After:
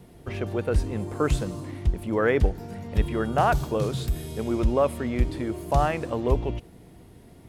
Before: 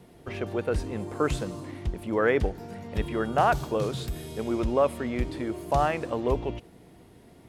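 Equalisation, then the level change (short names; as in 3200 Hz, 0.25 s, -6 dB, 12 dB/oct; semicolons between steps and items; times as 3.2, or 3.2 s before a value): low shelf 150 Hz +8.5 dB; high shelf 8200 Hz +5 dB; 0.0 dB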